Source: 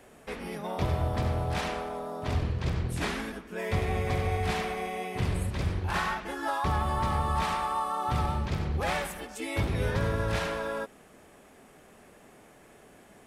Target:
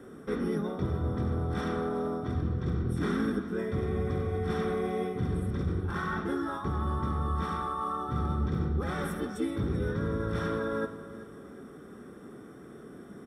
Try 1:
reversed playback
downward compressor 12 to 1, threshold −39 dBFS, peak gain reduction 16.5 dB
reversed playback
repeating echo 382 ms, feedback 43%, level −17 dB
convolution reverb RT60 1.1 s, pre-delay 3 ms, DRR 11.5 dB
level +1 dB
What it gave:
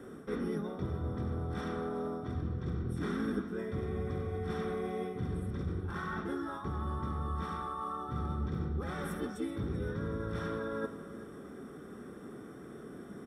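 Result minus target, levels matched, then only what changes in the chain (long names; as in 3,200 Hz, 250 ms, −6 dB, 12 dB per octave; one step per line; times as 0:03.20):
downward compressor: peak gain reduction +5.5 dB
change: downward compressor 12 to 1, threshold −33 dBFS, peak gain reduction 11 dB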